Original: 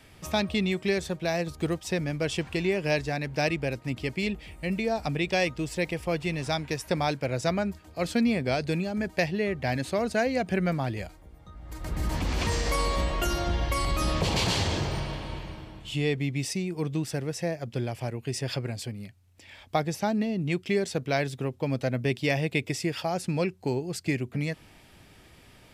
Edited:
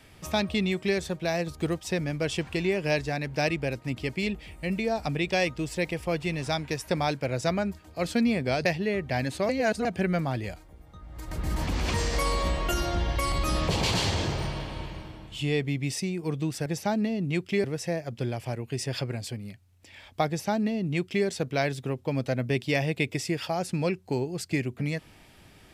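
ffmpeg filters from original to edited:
ffmpeg -i in.wav -filter_complex "[0:a]asplit=6[link_01][link_02][link_03][link_04][link_05][link_06];[link_01]atrim=end=8.652[link_07];[link_02]atrim=start=9.178:end=10.022[link_08];[link_03]atrim=start=10.018:end=10.382,asetpts=PTS-STARTPTS,areverse[link_09];[link_04]atrim=start=10.378:end=17.192[link_10];[link_05]atrim=start=19.828:end=20.812[link_11];[link_06]atrim=start=17.188[link_12];[link_07][link_08]acrossfade=duration=0.004:curve1=hsin:curve2=hsin[link_13];[link_13][link_09]acrossfade=duration=0.004:curve1=hsin:curve2=hsin[link_14];[link_14][link_10]acrossfade=duration=0.004:curve1=hsin:curve2=hsin[link_15];[link_15][link_11]acrossfade=duration=0.004:curve1=hsin:curve2=hsin[link_16];[link_16][link_12]acrossfade=duration=0.004:curve1=hsin:curve2=hsin" out.wav

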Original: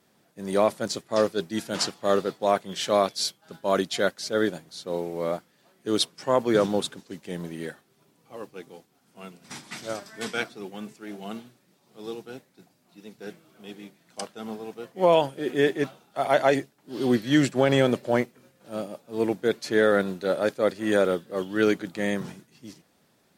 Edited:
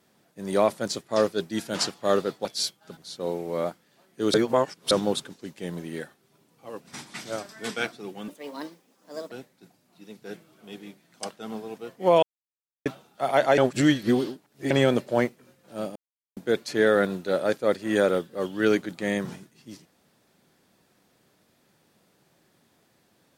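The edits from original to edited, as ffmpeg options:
ffmpeg -i in.wav -filter_complex "[0:a]asplit=14[link_01][link_02][link_03][link_04][link_05][link_06][link_07][link_08][link_09][link_10][link_11][link_12][link_13][link_14];[link_01]atrim=end=2.452[link_15];[link_02]atrim=start=3.058:end=3.582[link_16];[link_03]atrim=start=4.638:end=6.012[link_17];[link_04]atrim=start=6.008:end=6.582,asetpts=PTS-STARTPTS,areverse[link_18];[link_05]atrim=start=6.578:end=8.482[link_19];[link_06]atrim=start=9.378:end=10.854[link_20];[link_07]atrim=start=10.85:end=12.28,asetpts=PTS-STARTPTS,asetrate=60858,aresample=44100[link_21];[link_08]atrim=start=12.276:end=15.19,asetpts=PTS-STARTPTS,afade=type=out:start_time=2.91:duration=0.004:curve=hsin[link_22];[link_09]atrim=start=15.19:end=15.82,asetpts=PTS-STARTPTS,volume=0[link_23];[link_10]atrim=start=15.82:end=16.542,asetpts=PTS-STARTPTS,afade=type=in:duration=0.004:curve=hsin[link_24];[link_11]atrim=start=16.538:end=17.672,asetpts=PTS-STARTPTS,areverse[link_25];[link_12]atrim=start=17.668:end=18.92,asetpts=PTS-STARTPTS,afade=type=out:start_time=1.248:duration=0.004:curve=hsin[link_26];[link_13]atrim=start=18.92:end=19.33,asetpts=PTS-STARTPTS,volume=0[link_27];[link_14]atrim=start=19.33,asetpts=PTS-STARTPTS,afade=type=in:duration=0.004:curve=hsin[link_28];[link_15][link_16]acrossfade=duration=0.004:curve1=hsin:curve2=hsin[link_29];[link_29][link_17]acrossfade=duration=0.004:curve1=hsin:curve2=hsin[link_30];[link_30][link_18]acrossfade=duration=0.004:curve1=hsin:curve2=hsin[link_31];[link_31][link_19]acrossfade=duration=0.004:curve1=hsin:curve2=hsin[link_32];[link_32][link_20]acrossfade=duration=0.004:curve1=hsin:curve2=hsin[link_33];[link_33][link_21]acrossfade=duration=0.004:curve1=hsin:curve2=hsin[link_34];[link_22][link_23][link_24]concat=n=3:v=0:a=1[link_35];[link_34][link_35]acrossfade=duration=0.004:curve1=hsin:curve2=hsin[link_36];[link_36][link_25]acrossfade=duration=0.004:curve1=hsin:curve2=hsin[link_37];[link_26][link_27][link_28]concat=n=3:v=0:a=1[link_38];[link_37][link_38]acrossfade=duration=0.004:curve1=hsin:curve2=hsin" out.wav

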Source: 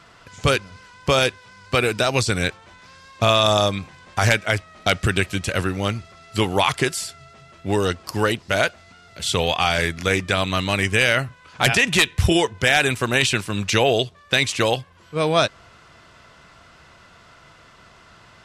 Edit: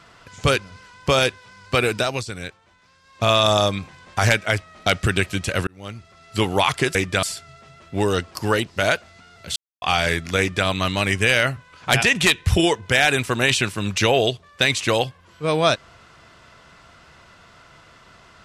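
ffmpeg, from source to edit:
ffmpeg -i in.wav -filter_complex "[0:a]asplit=8[link_01][link_02][link_03][link_04][link_05][link_06][link_07][link_08];[link_01]atrim=end=2.25,asetpts=PTS-STARTPTS,afade=type=out:start_time=1.95:duration=0.3:silence=0.298538[link_09];[link_02]atrim=start=2.25:end=3.03,asetpts=PTS-STARTPTS,volume=-10.5dB[link_10];[link_03]atrim=start=3.03:end=5.67,asetpts=PTS-STARTPTS,afade=type=in:duration=0.3:silence=0.298538,afade=type=out:start_time=2.636:duration=0.004:curve=hsin[link_11];[link_04]atrim=start=5.67:end=6.952,asetpts=PTS-STARTPTS,afade=type=in:duration=0.76[link_12];[link_05]atrim=start=10.108:end=10.392[link_13];[link_06]atrim=start=6.948:end=9.28,asetpts=PTS-STARTPTS,afade=type=out:start_time=2.328:duration=0.004:curve=hsin[link_14];[link_07]atrim=start=9.28:end=9.54,asetpts=PTS-STARTPTS,volume=0[link_15];[link_08]atrim=start=9.54,asetpts=PTS-STARTPTS,afade=type=in:duration=0.004:curve=hsin[link_16];[link_09][link_10][link_11][link_12]concat=n=4:v=0:a=1[link_17];[link_17][link_13]acrossfade=duration=0.004:curve1=hsin:curve2=hsin[link_18];[link_14][link_15][link_16]concat=n=3:v=0:a=1[link_19];[link_18][link_19]acrossfade=duration=0.004:curve1=hsin:curve2=hsin" out.wav

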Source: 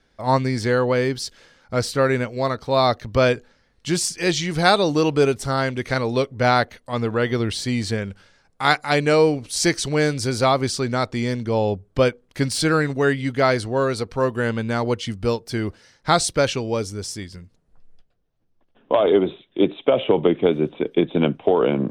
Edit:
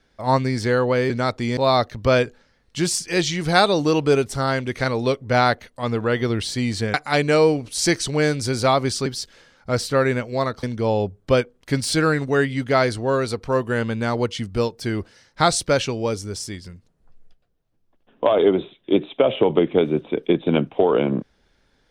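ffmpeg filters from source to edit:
ffmpeg -i in.wav -filter_complex "[0:a]asplit=6[link_01][link_02][link_03][link_04][link_05][link_06];[link_01]atrim=end=1.102[link_07];[link_02]atrim=start=10.838:end=11.312[link_08];[link_03]atrim=start=2.668:end=8.042[link_09];[link_04]atrim=start=8.718:end=10.842[link_10];[link_05]atrim=start=1.098:end=2.672[link_11];[link_06]atrim=start=11.308[link_12];[link_07][link_08]acrossfade=duration=0.004:curve1=hsin:curve2=hsin[link_13];[link_13][link_09]acrossfade=duration=0.004:curve1=hsin:curve2=hsin[link_14];[link_14][link_10]acrossfade=duration=0.004:curve1=hsin:curve2=hsin[link_15];[link_15][link_11]acrossfade=duration=0.004:curve1=hsin:curve2=hsin[link_16];[link_16][link_12]acrossfade=duration=0.004:curve1=hsin:curve2=hsin" out.wav

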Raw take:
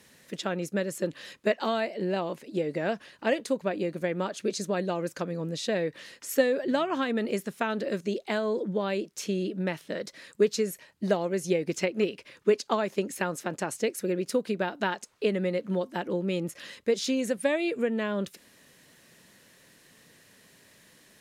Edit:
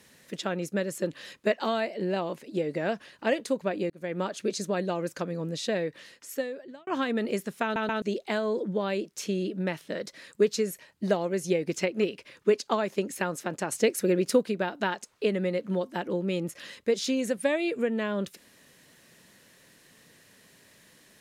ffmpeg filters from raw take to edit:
ffmpeg -i in.wav -filter_complex "[0:a]asplit=8[link_01][link_02][link_03][link_04][link_05][link_06][link_07][link_08];[link_01]atrim=end=3.9,asetpts=PTS-STARTPTS,afade=type=out:start_time=3.896:duration=0.004:curve=hsin[link_09];[link_02]atrim=start=3.9:end=6.87,asetpts=PTS-STARTPTS,afade=type=in:duration=0.29,afade=type=out:start_time=1.78:duration=1.19[link_10];[link_03]atrim=start=6.87:end=7.762,asetpts=PTS-STARTPTS,afade=type=in:duration=0.004:curve=hsin[link_11];[link_04]atrim=start=7.628:end=7.762[link_12];[link_05]atrim=start=7.628:end=7.762[link_13];[link_06]atrim=start=8.018:end=13.722[link_14];[link_07]atrim=start=13.718:end=14.432,asetpts=PTS-STARTPTS,volume=4.5dB[link_15];[link_08]atrim=start=14.428[link_16];[link_09][link_10][link_11]concat=n=3:v=0:a=1[link_17];[link_17][link_12]acrossfade=duration=0.004:curve1=hsin:curve2=hsin[link_18];[link_18][link_13]acrossfade=duration=0.004:curve1=hsin:curve2=hsin[link_19];[link_19][link_14]acrossfade=duration=0.004:curve1=hsin:curve2=hsin[link_20];[link_20][link_15]acrossfade=duration=0.004:curve1=hsin:curve2=hsin[link_21];[link_21][link_16]acrossfade=duration=0.004:curve1=hsin:curve2=hsin" out.wav

